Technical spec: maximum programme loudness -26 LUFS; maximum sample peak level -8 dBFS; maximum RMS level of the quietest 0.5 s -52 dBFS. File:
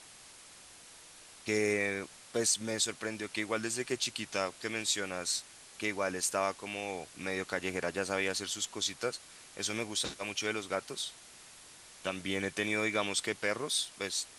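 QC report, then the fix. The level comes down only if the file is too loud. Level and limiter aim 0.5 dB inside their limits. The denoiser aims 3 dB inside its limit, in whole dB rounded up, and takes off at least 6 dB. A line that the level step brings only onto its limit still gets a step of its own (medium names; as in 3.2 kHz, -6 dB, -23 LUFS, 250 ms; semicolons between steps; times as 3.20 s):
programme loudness -33.5 LUFS: pass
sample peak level -15.5 dBFS: pass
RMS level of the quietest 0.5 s -54 dBFS: pass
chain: none needed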